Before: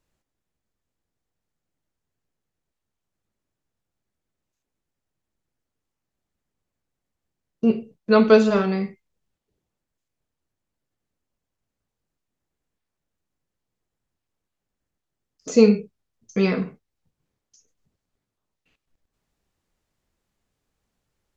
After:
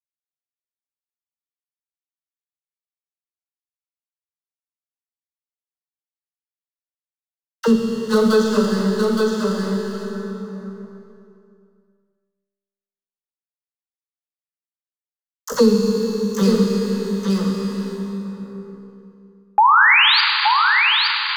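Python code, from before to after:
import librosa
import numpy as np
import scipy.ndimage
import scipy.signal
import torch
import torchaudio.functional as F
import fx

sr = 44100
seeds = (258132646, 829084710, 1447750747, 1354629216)

p1 = fx.spec_quant(x, sr, step_db=15)
p2 = fx.low_shelf(p1, sr, hz=120.0, db=10.5)
p3 = fx.rider(p2, sr, range_db=10, speed_s=0.5)
p4 = p2 + (p3 * librosa.db_to_amplitude(-1.0))
p5 = np.sign(p4) * np.maximum(np.abs(p4) - 10.0 ** (-22.5 / 20.0), 0.0)
p6 = fx.fixed_phaser(p5, sr, hz=470.0, stages=8)
p7 = fx.comb_fb(p6, sr, f0_hz=66.0, decay_s=1.5, harmonics='all', damping=0.0, mix_pct=80)
p8 = fx.dispersion(p7, sr, late='lows', ms=48.0, hz=520.0)
p9 = fx.spec_paint(p8, sr, seeds[0], shape='rise', start_s=19.58, length_s=0.63, low_hz=810.0, high_hz=4900.0, level_db=-18.0)
p10 = p9 + fx.echo_single(p9, sr, ms=869, db=-7.0, dry=0)
p11 = fx.rev_plate(p10, sr, seeds[1], rt60_s=2.3, hf_ratio=0.85, predelay_ms=0, drr_db=2.0)
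p12 = fx.band_squash(p11, sr, depth_pct=70)
y = p12 * librosa.db_to_amplitude(7.0)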